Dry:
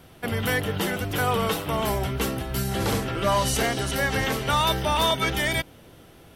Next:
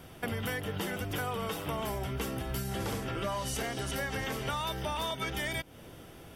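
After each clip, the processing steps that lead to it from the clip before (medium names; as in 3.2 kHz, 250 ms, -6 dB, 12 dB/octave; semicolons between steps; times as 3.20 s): band-stop 4.1 kHz, Q 11; compression 6:1, threshold -32 dBFS, peak gain reduction 13 dB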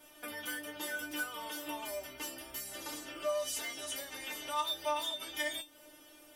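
tone controls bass -14 dB, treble +6 dB; feedback comb 300 Hz, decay 0.17 s, harmonics all, mix 100%; trim +7 dB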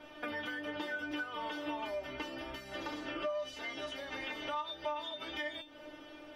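compression 6:1, threshold -43 dBFS, peak gain reduction 13.5 dB; distance through air 270 m; trim +9.5 dB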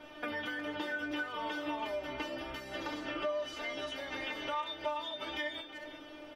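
speakerphone echo 360 ms, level -9 dB; trim +1.5 dB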